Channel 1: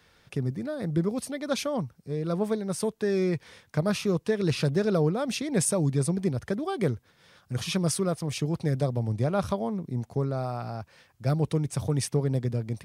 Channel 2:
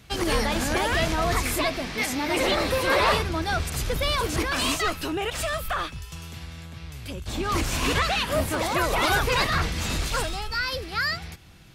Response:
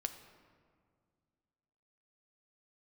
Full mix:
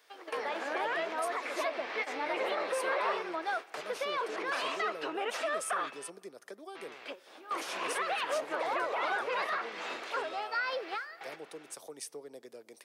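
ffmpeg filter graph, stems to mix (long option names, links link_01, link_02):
-filter_complex "[0:a]acrossover=split=290[link_01][link_02];[link_02]acompressor=threshold=-41dB:ratio=3[link_03];[link_01][link_03]amix=inputs=2:normalize=0,volume=-7dB,asplit=3[link_04][link_05][link_06];[link_05]volume=-13.5dB[link_07];[1:a]lowpass=2000,acompressor=threshold=-32dB:ratio=5,volume=1dB,asplit=3[link_08][link_09][link_10];[link_08]atrim=end=6.1,asetpts=PTS-STARTPTS,afade=type=out:start_time=6.096:duration=0.004:curve=hsin[link_11];[link_09]atrim=start=6.1:end=6.75,asetpts=PTS-STARTPTS,volume=0[link_12];[link_10]atrim=start=6.75,asetpts=PTS-STARTPTS,afade=type=in:duration=0.004:curve=hsin[link_13];[link_11][link_12][link_13]concat=n=3:v=0:a=1,asplit=2[link_14][link_15];[link_15]volume=-13dB[link_16];[link_06]apad=whole_len=517782[link_17];[link_14][link_17]sidechaingate=range=-33dB:threshold=-59dB:ratio=16:detection=peak[link_18];[2:a]atrim=start_sample=2205[link_19];[link_07][link_16]amix=inputs=2:normalize=0[link_20];[link_20][link_19]afir=irnorm=-1:irlink=0[link_21];[link_04][link_18][link_21]amix=inputs=3:normalize=0,highpass=frequency=420:width=0.5412,highpass=frequency=420:width=1.3066,highshelf=frequency=6100:gain=8"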